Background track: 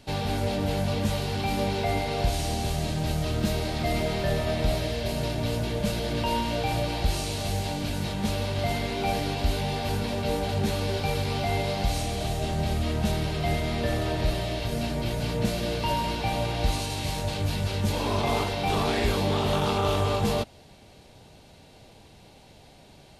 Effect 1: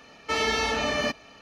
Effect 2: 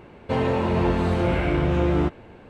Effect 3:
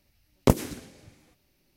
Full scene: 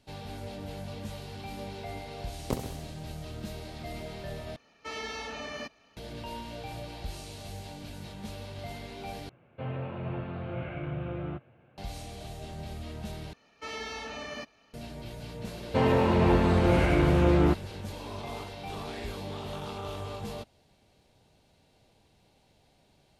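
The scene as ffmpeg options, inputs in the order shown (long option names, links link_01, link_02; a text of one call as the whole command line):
ffmpeg -i bed.wav -i cue0.wav -i cue1.wav -i cue2.wav -filter_complex "[1:a]asplit=2[link_01][link_02];[2:a]asplit=2[link_03][link_04];[0:a]volume=-13dB[link_05];[3:a]aecho=1:1:66|132|198|264|330|396:0.355|0.185|0.0959|0.0499|0.0259|0.0135[link_06];[link_03]highpass=120,equalizer=frequency=130:width_type=q:width=4:gain=9,equalizer=frequency=200:width_type=q:width=4:gain=-8,equalizer=frequency=290:width_type=q:width=4:gain=-6,equalizer=frequency=420:width_type=q:width=4:gain=-10,equalizer=frequency=940:width_type=q:width=4:gain=-10,equalizer=frequency=1900:width_type=q:width=4:gain=-8,lowpass=frequency=2800:width=0.5412,lowpass=frequency=2800:width=1.3066[link_07];[link_05]asplit=4[link_08][link_09][link_10][link_11];[link_08]atrim=end=4.564[link_12];[link_01]atrim=end=1.41,asetpts=PTS-STARTPTS,volume=-12.5dB[link_13];[link_09]atrim=start=5.966:end=9.294[link_14];[link_07]atrim=end=2.49,asetpts=PTS-STARTPTS,volume=-10.5dB[link_15];[link_10]atrim=start=11.776:end=13.334[link_16];[link_02]atrim=end=1.41,asetpts=PTS-STARTPTS,volume=-13dB[link_17];[link_11]atrim=start=14.736[link_18];[link_06]atrim=end=1.76,asetpts=PTS-STARTPTS,volume=-12dB,afade=type=in:duration=0.004:curve=hsin,afade=type=out:start_time=1.756:duration=0.004:curve=hsin,adelay=2030[link_19];[link_04]atrim=end=2.49,asetpts=PTS-STARTPTS,volume=-1dB,afade=type=in:duration=0.004:curve=hsin,afade=type=out:start_time=2.486:duration=0.004:curve=hsin,adelay=15450[link_20];[link_12][link_13]acrossfade=duration=0.004:curve1=hsin:curve2=hsin[link_21];[link_21][link_14]acrossfade=duration=0.004:curve1=hsin:curve2=hsin[link_22];[link_22][link_15]acrossfade=duration=0.004:curve1=hsin:curve2=hsin[link_23];[link_23][link_16]acrossfade=duration=0.004:curve1=hsin:curve2=hsin[link_24];[link_24][link_17]acrossfade=duration=0.004:curve1=hsin:curve2=hsin[link_25];[link_25][link_18]acrossfade=duration=0.004:curve1=hsin:curve2=hsin[link_26];[link_26][link_19][link_20]amix=inputs=3:normalize=0" out.wav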